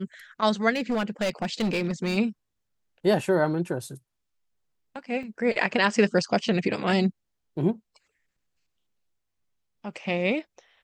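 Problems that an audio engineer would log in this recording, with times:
0:00.70–0:02.18: clipping −22 dBFS
0:05.23: drop-out 2.7 ms

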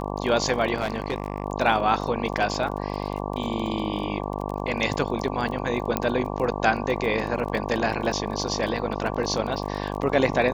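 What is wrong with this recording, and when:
mains buzz 50 Hz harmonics 23 −30 dBFS
surface crackle 30 per second −31 dBFS
0:00.74–0:01.44: clipping −20 dBFS
0:05.97: click −8 dBFS

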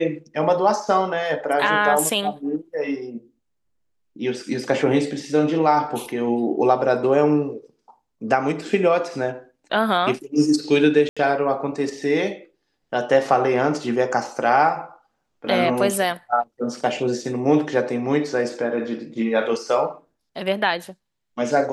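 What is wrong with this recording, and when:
0:11.09–0:11.17: drop-out 76 ms

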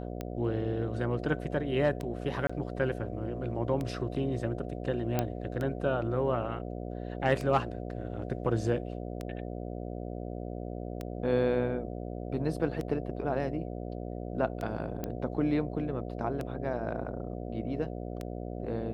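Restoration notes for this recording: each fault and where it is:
mains buzz 60 Hz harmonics 12 −38 dBFS
scratch tick 33 1/3 rpm −22 dBFS
0:02.47–0:02.50: drop-out 25 ms
0:05.19: click −14 dBFS
0:15.04: click −20 dBFS

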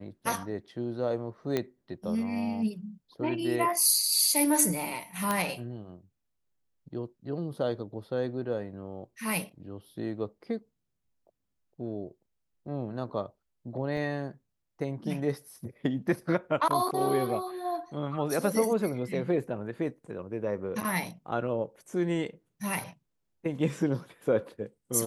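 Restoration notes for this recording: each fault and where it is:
0:01.57: click −15 dBFS
0:05.31: click −13 dBFS
0:13.97: drop-out 3.1 ms

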